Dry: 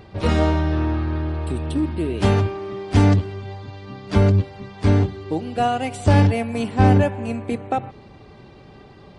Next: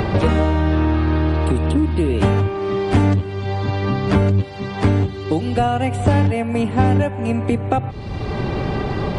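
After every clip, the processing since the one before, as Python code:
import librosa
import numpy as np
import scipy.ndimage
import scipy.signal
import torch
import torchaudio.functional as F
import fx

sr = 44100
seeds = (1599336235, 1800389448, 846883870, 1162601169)

y = fx.dynamic_eq(x, sr, hz=5200.0, q=1.5, threshold_db=-50.0, ratio=4.0, max_db=-7)
y = fx.band_squash(y, sr, depth_pct=100)
y = y * librosa.db_to_amplitude(2.0)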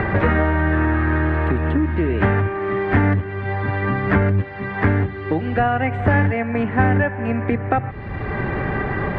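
y = fx.lowpass_res(x, sr, hz=1800.0, q=4.2)
y = y * librosa.db_to_amplitude(-2.0)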